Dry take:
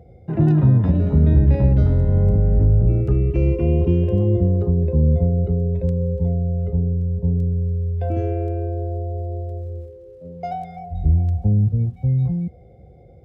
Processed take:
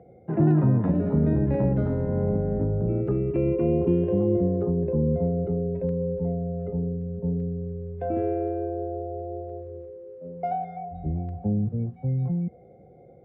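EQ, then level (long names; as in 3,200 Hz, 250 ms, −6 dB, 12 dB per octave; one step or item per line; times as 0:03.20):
three-way crossover with the lows and the highs turned down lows −20 dB, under 150 Hz, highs −23 dB, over 2,200 Hz
0.0 dB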